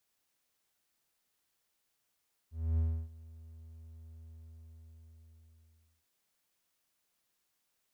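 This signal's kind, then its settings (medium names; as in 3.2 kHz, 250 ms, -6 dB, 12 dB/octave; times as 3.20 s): ADSR triangle 80.8 Hz, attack 269 ms, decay 303 ms, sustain -22.5 dB, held 1.76 s, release 1770 ms -24 dBFS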